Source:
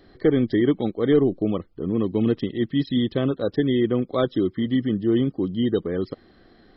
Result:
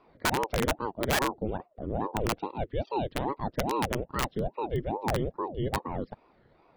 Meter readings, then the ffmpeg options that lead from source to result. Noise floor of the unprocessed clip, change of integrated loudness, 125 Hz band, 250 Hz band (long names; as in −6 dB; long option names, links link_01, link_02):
−55 dBFS, −8.5 dB, −7.0 dB, −14.0 dB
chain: -af "lowpass=2700,aeval=exprs='(mod(3.98*val(0)+1,2)-1)/3.98':channel_layout=same,aeval=exprs='val(0)*sin(2*PI*410*n/s+410*0.75/2.4*sin(2*PI*2.4*n/s))':channel_layout=same,volume=-5.5dB"